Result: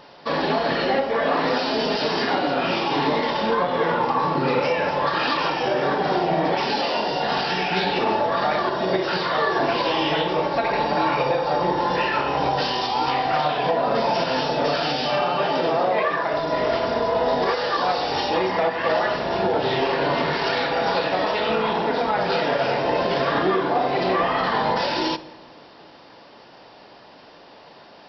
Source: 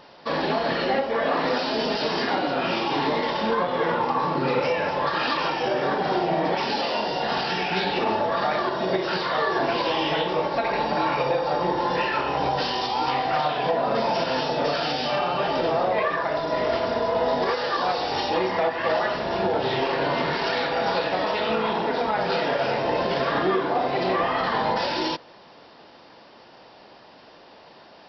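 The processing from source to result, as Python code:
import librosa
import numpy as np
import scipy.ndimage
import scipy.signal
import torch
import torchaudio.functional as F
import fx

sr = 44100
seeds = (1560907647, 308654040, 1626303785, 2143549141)

y = fx.highpass(x, sr, hz=140.0, slope=12, at=(15.23, 16.34))
y = fx.room_shoebox(y, sr, seeds[0], volume_m3=1200.0, walls='mixed', distance_m=0.31)
y = y * 10.0 ** (2.0 / 20.0)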